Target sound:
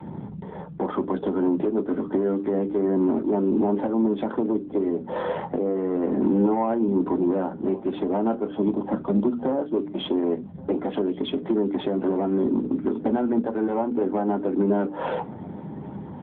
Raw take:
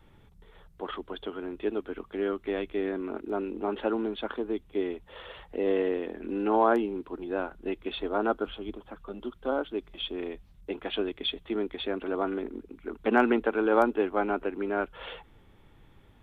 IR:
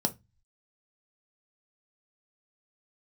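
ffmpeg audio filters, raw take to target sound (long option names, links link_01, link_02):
-filter_complex "[0:a]lowpass=1700,bandreject=frequency=60:width_type=h:width=6,bandreject=frequency=120:width_type=h:width=6,bandreject=frequency=180:width_type=h:width=6,bandreject=frequency=240:width_type=h:width=6,bandreject=frequency=300:width_type=h:width=6,acompressor=threshold=-37dB:ratio=20,alimiter=level_in=10dB:limit=-24dB:level=0:latency=1:release=458,volume=-10dB,aeval=exprs='0.0211*sin(PI/2*1.41*val(0)/0.0211)':channel_layout=same,aecho=1:1:1129:0.0841[link_01];[1:a]atrim=start_sample=2205,afade=type=out:start_time=0.25:duration=0.01,atrim=end_sample=11466[link_02];[link_01][link_02]afir=irnorm=-1:irlink=0,volume=6dB" -ar 8000 -c:a libopencore_amrnb -b:a 10200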